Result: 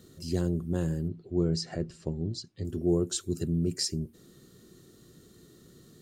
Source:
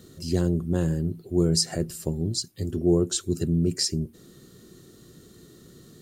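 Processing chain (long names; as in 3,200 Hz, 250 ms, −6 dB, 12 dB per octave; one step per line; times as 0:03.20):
0:01.08–0:02.65: Gaussian smoothing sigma 1.6 samples
level −5 dB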